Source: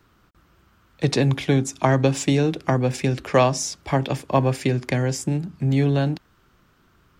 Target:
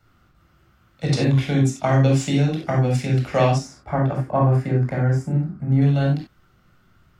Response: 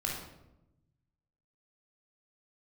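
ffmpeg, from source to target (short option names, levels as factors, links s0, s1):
-filter_complex "[0:a]asettb=1/sr,asplit=3[s0][s1][s2];[s0]atrim=end=3.584[s3];[s1]atrim=start=3.58:end=5.82,asetpts=PTS-STARTPTS,afade=t=in:d=0.004:c=qsin,afade=t=out:st=2.236:d=0.004:c=qsin,highshelf=f=2100:t=q:w=1.5:g=-12.5[s4];[s2]atrim=start=5.816[s5];[s3][s4]acrossfade=d=0.004:c1=hsin:c2=qsin[s6];[s6][s5]acrossfade=d=0.004:c1=qsin:c2=hsin[s7];[1:a]atrim=start_sample=2205,atrim=end_sample=4410[s8];[s7][s8]afir=irnorm=-1:irlink=0,volume=0.596"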